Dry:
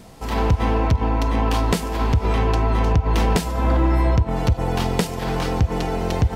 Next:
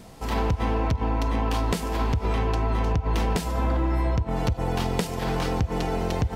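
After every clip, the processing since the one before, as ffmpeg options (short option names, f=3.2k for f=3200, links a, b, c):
-af "acompressor=threshold=-18dB:ratio=6,volume=-2dB"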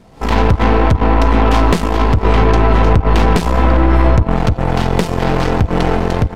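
-af "lowpass=f=2.8k:p=1,aeval=exprs='0.224*(cos(1*acos(clip(val(0)/0.224,-1,1)))-cos(1*PI/2))+0.0282*(cos(8*acos(clip(val(0)/0.224,-1,1)))-cos(8*PI/2))':c=same,dynaudnorm=f=120:g=3:m=14dB"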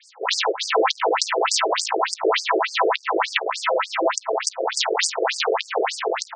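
-af "crystalizer=i=6:c=0,afftfilt=real='re*between(b*sr/1024,450*pow(6600/450,0.5+0.5*sin(2*PI*3.4*pts/sr))/1.41,450*pow(6600/450,0.5+0.5*sin(2*PI*3.4*pts/sr))*1.41)':imag='im*between(b*sr/1024,450*pow(6600/450,0.5+0.5*sin(2*PI*3.4*pts/sr))/1.41,450*pow(6600/450,0.5+0.5*sin(2*PI*3.4*pts/sr))*1.41)':win_size=1024:overlap=0.75"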